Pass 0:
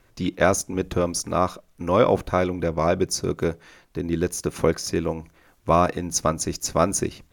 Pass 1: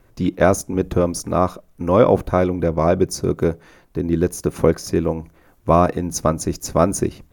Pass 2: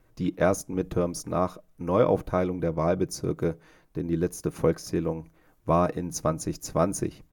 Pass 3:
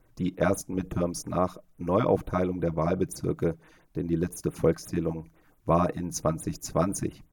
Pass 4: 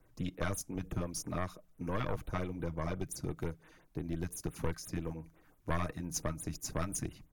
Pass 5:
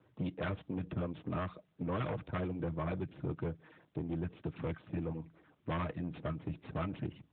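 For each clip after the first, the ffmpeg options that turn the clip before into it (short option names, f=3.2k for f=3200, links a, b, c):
-af "equalizer=f=4.1k:w=0.32:g=-9,volume=6dB"
-af "aecho=1:1:6.4:0.32,volume=-8.5dB"
-af "afftfilt=real='re*(1-between(b*sr/1024,400*pow(5900/400,0.5+0.5*sin(2*PI*5.8*pts/sr))/1.41,400*pow(5900/400,0.5+0.5*sin(2*PI*5.8*pts/sr))*1.41))':imag='im*(1-between(b*sr/1024,400*pow(5900/400,0.5+0.5*sin(2*PI*5.8*pts/sr))/1.41,400*pow(5900/400,0.5+0.5*sin(2*PI*5.8*pts/sr))*1.41))':win_size=1024:overlap=0.75"
-filter_complex "[0:a]aeval=exprs='(tanh(5.01*val(0)+0.75)-tanh(0.75))/5.01':c=same,acrossover=split=110|1400|2600[a][b][c][d];[b]acompressor=threshold=-38dB:ratio=6[e];[a][e][c][d]amix=inputs=4:normalize=0,volume=1dB"
-af "aeval=exprs='(tanh(56.2*val(0)+0.55)-tanh(0.55))/56.2':c=same,volume=5.5dB" -ar 8000 -c:a libopencore_amrnb -b:a 12200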